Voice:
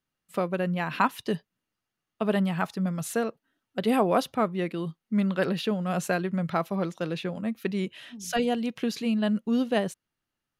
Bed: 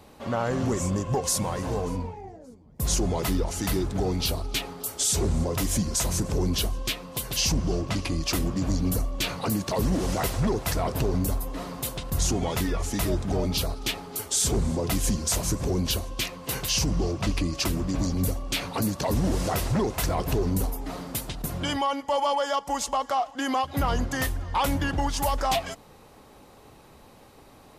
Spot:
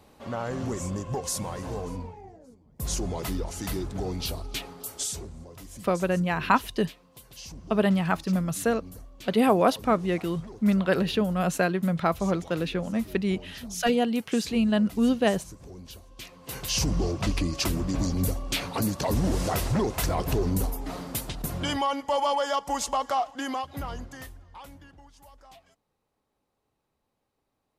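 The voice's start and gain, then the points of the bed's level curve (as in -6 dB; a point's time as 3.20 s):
5.50 s, +2.5 dB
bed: 5.03 s -5 dB
5.31 s -18.5 dB
16.00 s -18.5 dB
16.82 s -0.5 dB
23.21 s -0.5 dB
25.08 s -27.5 dB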